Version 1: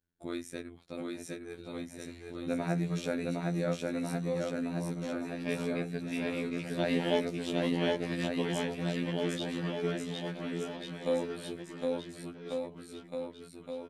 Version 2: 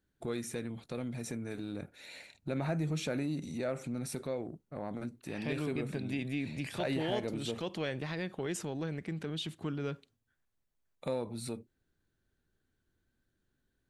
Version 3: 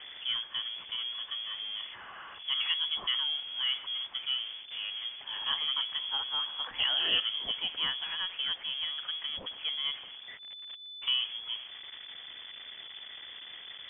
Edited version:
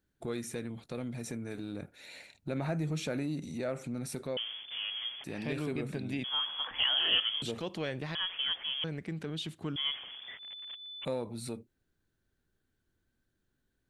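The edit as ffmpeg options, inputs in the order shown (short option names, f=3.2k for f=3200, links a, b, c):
-filter_complex "[2:a]asplit=4[a][b][c][d];[1:a]asplit=5[e][f][g][h][i];[e]atrim=end=4.372[j];[a]atrim=start=4.368:end=5.242[k];[f]atrim=start=5.238:end=6.242[l];[b]atrim=start=6.238:end=7.422[m];[g]atrim=start=7.418:end=8.152[n];[c]atrim=start=8.148:end=8.842[o];[h]atrim=start=8.838:end=9.762[p];[d]atrim=start=9.758:end=11.052[q];[i]atrim=start=11.048[r];[j][k]acrossfade=d=0.004:c1=hsin:c2=hsin[s];[s][l]acrossfade=d=0.004:c1=hsin:c2=hsin[t];[t][m]acrossfade=d=0.004:c1=hsin:c2=hsin[u];[u][n]acrossfade=d=0.004:c1=hsin:c2=hsin[v];[v][o]acrossfade=d=0.004:c1=hsin:c2=hsin[w];[w][p]acrossfade=d=0.004:c1=hsin:c2=hsin[x];[x][q]acrossfade=d=0.004:c1=hsin:c2=hsin[y];[y][r]acrossfade=d=0.004:c1=hsin:c2=hsin"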